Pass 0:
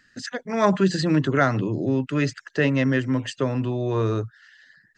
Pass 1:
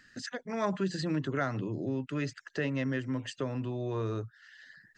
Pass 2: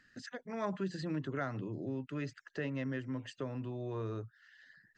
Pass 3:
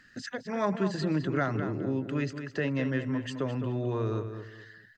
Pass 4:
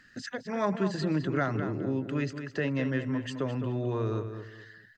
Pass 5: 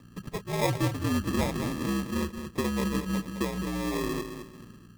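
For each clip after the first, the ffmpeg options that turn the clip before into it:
-af "acompressor=threshold=0.00355:ratio=1.5"
-af "highshelf=f=4500:g=-7,volume=0.531"
-filter_complex "[0:a]asplit=2[s0][s1];[s1]adelay=211,lowpass=f=3800:p=1,volume=0.376,asplit=2[s2][s3];[s3]adelay=211,lowpass=f=3800:p=1,volume=0.29,asplit=2[s4][s5];[s5]adelay=211,lowpass=f=3800:p=1,volume=0.29[s6];[s0][s2][s4][s6]amix=inputs=4:normalize=0,volume=2.51"
-af anull
-af "aeval=exprs='val(0)+0.00501*(sin(2*PI*60*n/s)+sin(2*PI*2*60*n/s)/2+sin(2*PI*3*60*n/s)/3+sin(2*PI*4*60*n/s)/4+sin(2*PI*5*60*n/s)/5)':c=same,highpass=f=160:t=q:w=0.5412,highpass=f=160:t=q:w=1.307,lowpass=f=2600:t=q:w=0.5176,lowpass=f=2600:t=q:w=0.7071,lowpass=f=2600:t=q:w=1.932,afreqshift=-66,acrusher=samples=30:mix=1:aa=0.000001,volume=1.26"

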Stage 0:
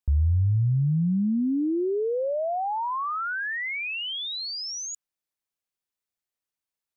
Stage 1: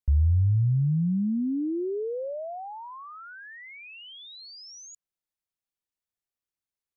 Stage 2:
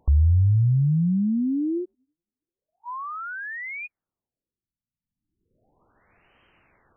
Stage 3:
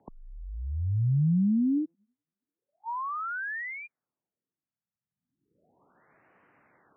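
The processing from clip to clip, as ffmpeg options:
-filter_complex "[0:a]lowshelf=f=210:g=7,acrossover=split=640[s0][s1];[s1]acompressor=threshold=0.0112:ratio=6[s2];[s0][s2]amix=inputs=2:normalize=0,volume=0.531"
-af "acompressor=mode=upward:threshold=0.0316:ratio=2.5,afftfilt=real='re*lt(b*sr/1024,270*pow(3200/270,0.5+0.5*sin(2*PI*0.35*pts/sr)))':imag='im*lt(b*sr/1024,270*pow(3200/270,0.5+0.5*sin(2*PI*0.35*pts/sr)))':win_size=1024:overlap=0.75,volume=1.5"
-af "highpass=f=180:t=q:w=0.5412,highpass=f=180:t=q:w=1.307,lowpass=f=2100:t=q:w=0.5176,lowpass=f=2100:t=q:w=0.7071,lowpass=f=2100:t=q:w=1.932,afreqshift=-52"

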